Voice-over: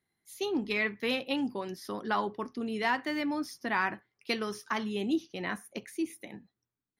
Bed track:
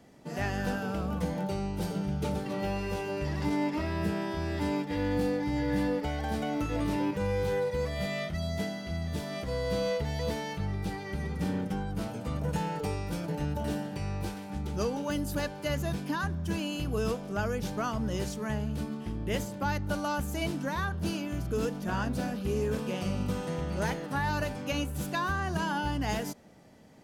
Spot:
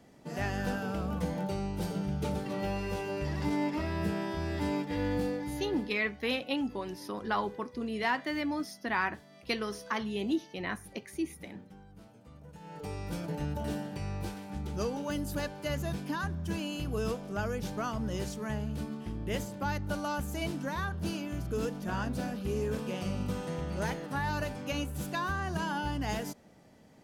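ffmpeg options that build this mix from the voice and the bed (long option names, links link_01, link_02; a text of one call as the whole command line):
ffmpeg -i stem1.wav -i stem2.wav -filter_complex "[0:a]adelay=5200,volume=-1dB[link_01];[1:a]volume=15.5dB,afade=type=out:start_time=5.07:duration=0.86:silence=0.125893,afade=type=in:start_time=12.6:duration=0.52:silence=0.141254[link_02];[link_01][link_02]amix=inputs=2:normalize=0" out.wav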